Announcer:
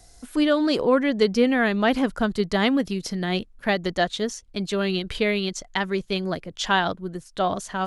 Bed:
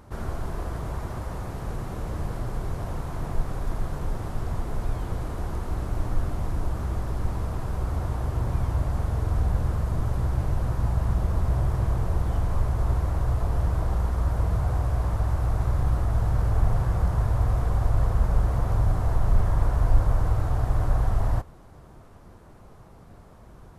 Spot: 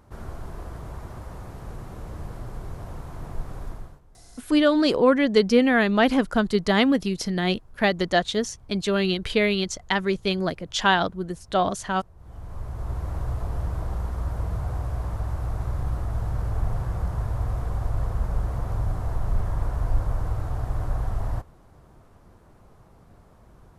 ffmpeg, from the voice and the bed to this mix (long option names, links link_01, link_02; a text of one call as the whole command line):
ffmpeg -i stem1.wav -i stem2.wav -filter_complex "[0:a]adelay=4150,volume=1.5dB[link_01];[1:a]volume=17.5dB,afade=type=out:start_time=3.64:duration=0.37:silence=0.0841395,afade=type=in:start_time=12.16:duration=1:silence=0.0707946[link_02];[link_01][link_02]amix=inputs=2:normalize=0" out.wav